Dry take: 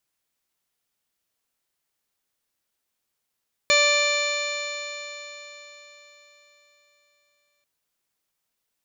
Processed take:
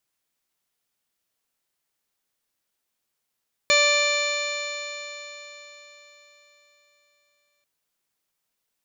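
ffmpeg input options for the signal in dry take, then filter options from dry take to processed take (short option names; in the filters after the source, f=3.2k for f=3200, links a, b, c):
-f lavfi -i "aevalsrc='0.0841*pow(10,-3*t/4.18)*sin(2*PI*582.44*t)+0.0473*pow(10,-3*t/4.18)*sin(2*PI*1167.49*t)+0.0447*pow(10,-3*t/4.18)*sin(2*PI*1757.75*t)+0.126*pow(10,-3*t/4.18)*sin(2*PI*2355.77*t)+0.0224*pow(10,-3*t/4.18)*sin(2*PI*2964.06*t)+0.0531*pow(10,-3*t/4.18)*sin(2*PI*3585.04*t)+0.0668*pow(10,-3*t/4.18)*sin(2*PI*4221.07*t)+0.0168*pow(10,-3*t/4.18)*sin(2*PI*4874.37*t)+0.0211*pow(10,-3*t/4.18)*sin(2*PI*5547.09*t)+0.0119*pow(10,-3*t/4.18)*sin(2*PI*6241.25*t)+0.0596*pow(10,-3*t/4.18)*sin(2*PI*6958.77*t)':d=3.94:s=44100"
-af "equalizer=f=63:t=o:w=0.67:g=-5"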